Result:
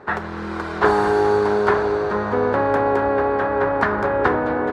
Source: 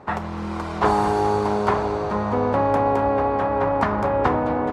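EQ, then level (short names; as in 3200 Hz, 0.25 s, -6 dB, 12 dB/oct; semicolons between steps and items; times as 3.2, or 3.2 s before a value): fifteen-band EQ 400 Hz +9 dB, 1600 Hz +12 dB, 4000 Hz +5 dB; -3.0 dB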